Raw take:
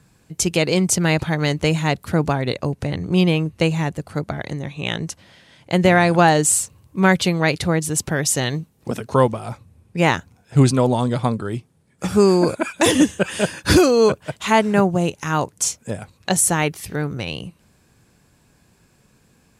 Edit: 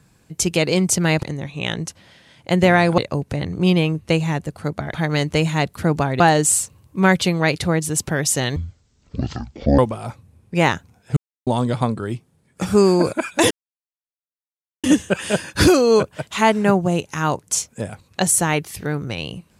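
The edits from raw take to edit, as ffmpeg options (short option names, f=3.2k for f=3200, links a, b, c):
-filter_complex "[0:a]asplit=10[a][b][c][d][e][f][g][h][i][j];[a]atrim=end=1.232[k];[b]atrim=start=4.448:end=6.202[l];[c]atrim=start=2.488:end=4.452[m];[d]atrim=start=1.228:end=2.492[n];[e]atrim=start=6.198:end=8.564[o];[f]atrim=start=8.56:end=9.21,asetpts=PTS-STARTPTS,asetrate=23373,aresample=44100[p];[g]atrim=start=9.206:end=10.59,asetpts=PTS-STARTPTS,afade=t=out:st=1.38:d=0.004:c=hsin[q];[h]atrim=start=10.59:end=10.89,asetpts=PTS-STARTPTS,volume=0[r];[i]atrim=start=10.89:end=12.93,asetpts=PTS-STARTPTS,afade=t=in:d=0.004:c=hsin,afade=t=out:st=2.036:d=0.004:c=hsin,apad=pad_dur=1.33[s];[j]atrim=start=12.93,asetpts=PTS-STARTPTS,afade=t=in:d=0.004:c=hsin[t];[k][l]acrossfade=d=0.004:c1=hsin:c2=hsin[u];[u][m]acrossfade=d=0.004:c1=hsin:c2=hsin[v];[v][n]acrossfade=d=0.004:c1=hsin:c2=hsin[w];[w][o]acrossfade=d=0.004:c1=hsin:c2=hsin[x];[x][p]acrossfade=d=0.004:c1=hsin:c2=hsin[y];[q][r][s][t]concat=n=4:v=0:a=1[z];[y][z]acrossfade=d=0.004:c1=hsin:c2=hsin"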